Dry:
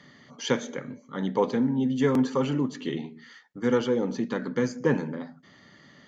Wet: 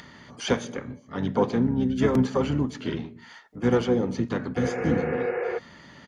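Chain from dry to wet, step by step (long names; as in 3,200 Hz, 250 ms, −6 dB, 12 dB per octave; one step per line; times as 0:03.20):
upward compression, threshold −42 dBFS
pitch-shifted copies added −12 semitones −7 dB, −5 semitones −9 dB, +7 semitones −16 dB
healed spectral selection 0:04.62–0:05.55, 350–2,900 Hz before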